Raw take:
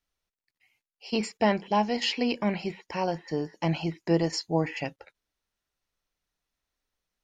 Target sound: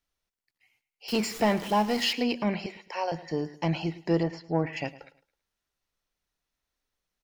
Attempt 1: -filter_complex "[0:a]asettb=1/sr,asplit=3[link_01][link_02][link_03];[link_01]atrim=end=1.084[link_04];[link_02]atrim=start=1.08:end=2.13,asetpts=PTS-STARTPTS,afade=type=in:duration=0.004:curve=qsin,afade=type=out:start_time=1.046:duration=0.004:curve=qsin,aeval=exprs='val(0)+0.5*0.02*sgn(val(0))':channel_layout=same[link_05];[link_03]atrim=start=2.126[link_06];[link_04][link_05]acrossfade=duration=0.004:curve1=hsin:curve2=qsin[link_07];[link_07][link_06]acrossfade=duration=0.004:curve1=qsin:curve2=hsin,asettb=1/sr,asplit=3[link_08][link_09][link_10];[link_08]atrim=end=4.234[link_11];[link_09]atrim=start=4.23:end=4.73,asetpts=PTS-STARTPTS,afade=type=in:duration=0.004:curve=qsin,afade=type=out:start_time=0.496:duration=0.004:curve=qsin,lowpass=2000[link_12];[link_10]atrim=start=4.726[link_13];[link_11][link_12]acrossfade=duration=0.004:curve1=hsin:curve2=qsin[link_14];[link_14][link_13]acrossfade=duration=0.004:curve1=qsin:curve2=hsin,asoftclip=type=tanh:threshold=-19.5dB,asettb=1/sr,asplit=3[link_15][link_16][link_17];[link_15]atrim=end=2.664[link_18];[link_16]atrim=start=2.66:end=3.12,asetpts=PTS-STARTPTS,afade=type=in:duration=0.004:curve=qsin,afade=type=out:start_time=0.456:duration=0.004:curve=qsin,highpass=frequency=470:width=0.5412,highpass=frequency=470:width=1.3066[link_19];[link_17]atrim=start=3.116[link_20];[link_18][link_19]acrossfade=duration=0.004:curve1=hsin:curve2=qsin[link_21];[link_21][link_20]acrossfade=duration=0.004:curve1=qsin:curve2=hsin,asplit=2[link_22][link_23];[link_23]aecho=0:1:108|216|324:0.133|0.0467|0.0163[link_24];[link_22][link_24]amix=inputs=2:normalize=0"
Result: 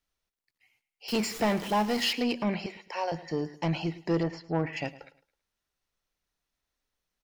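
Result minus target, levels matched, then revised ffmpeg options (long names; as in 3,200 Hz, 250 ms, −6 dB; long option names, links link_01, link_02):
soft clipping: distortion +8 dB
-filter_complex "[0:a]asettb=1/sr,asplit=3[link_01][link_02][link_03];[link_01]atrim=end=1.084[link_04];[link_02]atrim=start=1.08:end=2.13,asetpts=PTS-STARTPTS,afade=type=in:duration=0.004:curve=qsin,afade=type=out:start_time=1.046:duration=0.004:curve=qsin,aeval=exprs='val(0)+0.5*0.02*sgn(val(0))':channel_layout=same[link_05];[link_03]atrim=start=2.126[link_06];[link_04][link_05]acrossfade=duration=0.004:curve1=hsin:curve2=qsin[link_07];[link_07][link_06]acrossfade=duration=0.004:curve1=qsin:curve2=hsin,asettb=1/sr,asplit=3[link_08][link_09][link_10];[link_08]atrim=end=4.234[link_11];[link_09]atrim=start=4.23:end=4.73,asetpts=PTS-STARTPTS,afade=type=in:duration=0.004:curve=qsin,afade=type=out:start_time=0.496:duration=0.004:curve=qsin,lowpass=2000[link_12];[link_10]atrim=start=4.726[link_13];[link_11][link_12]acrossfade=duration=0.004:curve1=hsin:curve2=qsin[link_14];[link_14][link_13]acrossfade=duration=0.004:curve1=qsin:curve2=hsin,asoftclip=type=tanh:threshold=-13dB,asettb=1/sr,asplit=3[link_15][link_16][link_17];[link_15]atrim=end=2.664[link_18];[link_16]atrim=start=2.66:end=3.12,asetpts=PTS-STARTPTS,afade=type=in:duration=0.004:curve=qsin,afade=type=out:start_time=0.456:duration=0.004:curve=qsin,highpass=frequency=470:width=0.5412,highpass=frequency=470:width=1.3066[link_19];[link_17]atrim=start=3.116[link_20];[link_18][link_19]acrossfade=duration=0.004:curve1=hsin:curve2=qsin[link_21];[link_21][link_20]acrossfade=duration=0.004:curve1=qsin:curve2=hsin,asplit=2[link_22][link_23];[link_23]aecho=0:1:108|216|324:0.133|0.0467|0.0163[link_24];[link_22][link_24]amix=inputs=2:normalize=0"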